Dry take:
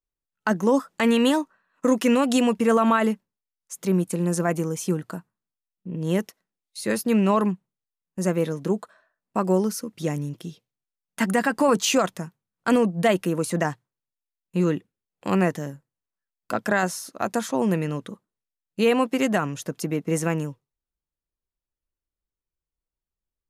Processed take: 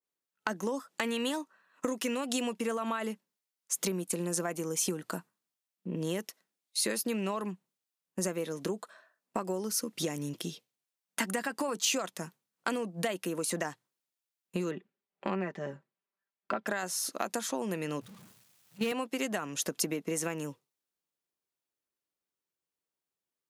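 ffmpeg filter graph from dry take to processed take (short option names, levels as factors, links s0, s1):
-filter_complex "[0:a]asettb=1/sr,asplit=3[s0][s1][s2];[s0]atrim=end=14.714[s3];[s1]atrim=start=14.71:end=16.67,asetpts=PTS-STARTPTS,afade=t=in:d=0.004:c=qsin,afade=t=out:st=1.956:d=0.004:c=qsin,lowpass=2400,aecho=1:1:5.1:0.59,atrim=end_sample=86436[s4];[s2]atrim=start=16.666[s5];[s3][s4]acrossfade=d=0.004:c1=hsin:c2=qsin[s6];[s6][s5]acrossfade=d=0.004:c1=qsin:c2=hsin,asettb=1/sr,asplit=3[s7][s8][s9];[s7]atrim=end=18.014[s10];[s8]atrim=start=18.01:end=18.92,asetpts=PTS-STARTPTS,afade=t=in:d=0.004:c=qsin,afade=t=out:st=0.906:d=0.004:c=qsin,aeval=exprs='val(0)+0.5*0.0531*sgn(val(0))':c=same,agate=range=0.0447:threshold=0.112:ratio=16:release=100:detection=peak,lowshelf=f=210:t=q:w=1.5:g=14[s11];[s9]atrim=start=18.916[s12];[s10][s11]acrossfade=d=0.004:c1=hsin:c2=qsin[s13];[s13][s12]acrossfade=d=0.004:c1=qsin:c2=hsin,highpass=230,acompressor=threshold=0.0251:ratio=10,adynamicequalizer=threshold=0.002:dfrequency=2300:dqfactor=0.7:tfrequency=2300:tqfactor=0.7:attack=5:release=100:ratio=0.375:range=3:mode=boostabove:tftype=highshelf,volume=1.26"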